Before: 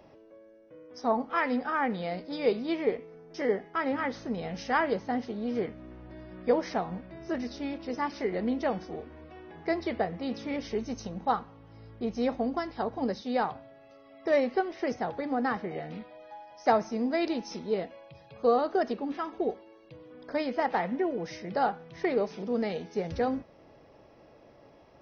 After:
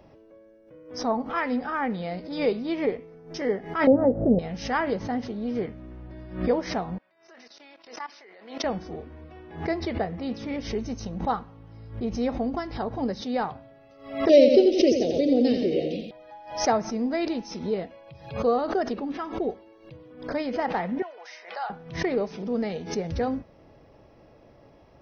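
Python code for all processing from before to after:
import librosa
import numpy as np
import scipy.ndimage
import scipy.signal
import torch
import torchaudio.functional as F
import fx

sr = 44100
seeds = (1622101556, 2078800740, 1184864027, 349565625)

y = fx.chain(x, sr, fx.lowpass(hz=1100.0, slope=24),
    fx.low_shelf_res(hz=800.0, db=8.5, q=3.0), at=(3.87, 4.39))
y = fx.chain(y, sr, fx.highpass(hz=870.0, slope=12),
    fx.level_steps(step_db=17), at=(6.98, 8.64))
y = fx.chain(y, sr, fx.curve_eq(hz=(200.0, 310.0, 580.0, 970.0, 1400.0, 2700.0), db=(0, 11, 10, -28, -27, 13)),
    fx.echo_feedback(ms=86, feedback_pct=48, wet_db=-6.5), at=(14.29, 16.11))
y = fx.chain(y, sr, fx.highpass(hz=750.0, slope=24),
    fx.air_absorb(metres=53.0),
    fx.band_squash(depth_pct=40), at=(21.02, 21.7))
y = fx.low_shelf(y, sr, hz=160.0, db=9.0)
y = fx.pre_swell(y, sr, db_per_s=110.0)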